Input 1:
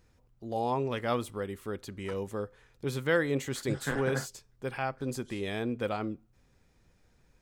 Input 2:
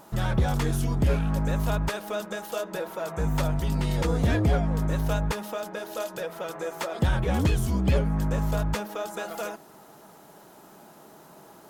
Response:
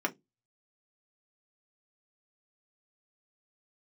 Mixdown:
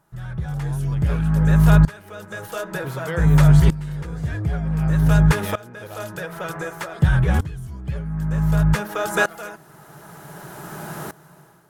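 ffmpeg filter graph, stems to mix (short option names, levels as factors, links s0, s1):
-filter_complex "[0:a]volume=0.944[s0];[1:a]equalizer=f=160:t=o:w=0.67:g=10,equalizer=f=1600:t=o:w=0.67:g=7,equalizer=f=10000:t=o:w=0.67:g=4,volume=1.19,asplit=2[s1][s2];[s2]volume=0.141[s3];[2:a]atrim=start_sample=2205[s4];[s3][s4]afir=irnorm=-1:irlink=0[s5];[s0][s1][s5]amix=inputs=3:normalize=0,lowshelf=f=160:t=q:w=1.5:g=7,dynaudnorm=f=120:g=7:m=5.01,aeval=exprs='val(0)*pow(10,-20*if(lt(mod(-0.54*n/s,1),2*abs(-0.54)/1000),1-mod(-0.54*n/s,1)/(2*abs(-0.54)/1000),(mod(-0.54*n/s,1)-2*abs(-0.54)/1000)/(1-2*abs(-0.54)/1000))/20)':c=same"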